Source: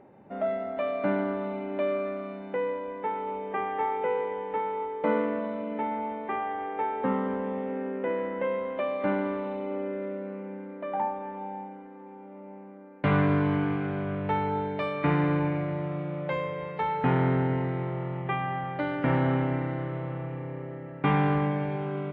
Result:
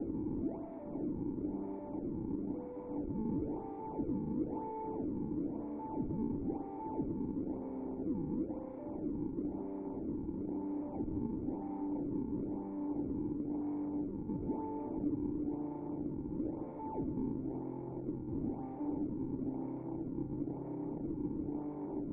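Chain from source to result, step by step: one-bit comparator; bass shelf 330 Hz -10.5 dB; two-band feedback delay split 1.2 kHz, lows 152 ms, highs 102 ms, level -8.5 dB; decimation with a swept rate 38×, swing 160% 1 Hz; whistle 1.4 kHz -45 dBFS; cascade formant filter u; peaking EQ 800 Hz -4 dB 0.48 oct; small resonant body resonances 1.8/2.7 kHz, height 7 dB; trim +2.5 dB

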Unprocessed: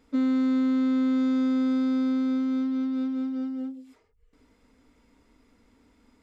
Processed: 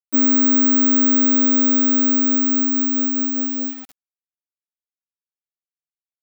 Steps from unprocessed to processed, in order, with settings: bass shelf 360 Hz -2.5 dB; word length cut 8-bit, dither none; careless resampling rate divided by 2×, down none, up zero stuff; trim +6.5 dB

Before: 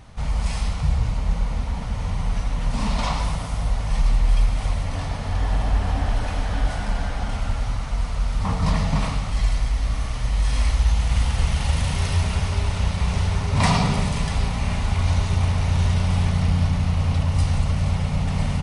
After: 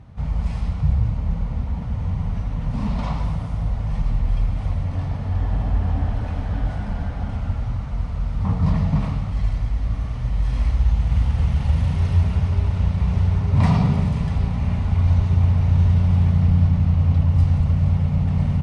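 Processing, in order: high-pass 98 Hz 12 dB/octave; RIAA curve playback; trim -5.5 dB

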